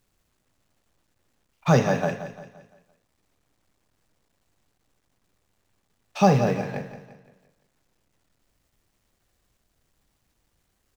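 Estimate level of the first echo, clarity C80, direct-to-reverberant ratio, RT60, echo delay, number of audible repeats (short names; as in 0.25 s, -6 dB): -12.0 dB, none, none, none, 0.172 s, 4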